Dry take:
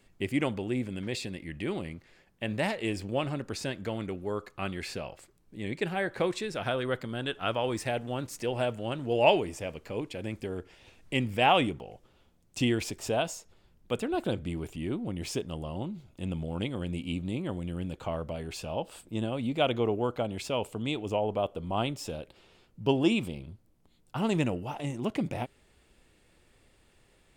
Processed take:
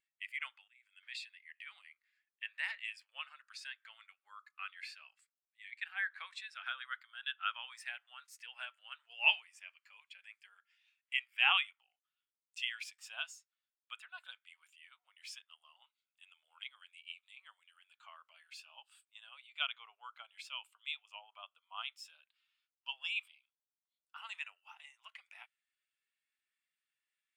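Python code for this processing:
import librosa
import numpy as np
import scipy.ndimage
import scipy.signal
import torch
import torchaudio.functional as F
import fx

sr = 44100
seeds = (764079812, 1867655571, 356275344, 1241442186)

y = fx.edit(x, sr, fx.fade_in_from(start_s=0.68, length_s=0.43, floor_db=-15.0), tone=tone)
y = scipy.signal.sosfilt(scipy.signal.cheby2(4, 70, 280.0, 'highpass', fs=sr, output='sos'), y)
y = fx.dynamic_eq(y, sr, hz=7100.0, q=1.4, threshold_db=-55.0, ratio=4.0, max_db=-4)
y = fx.spectral_expand(y, sr, expansion=1.5)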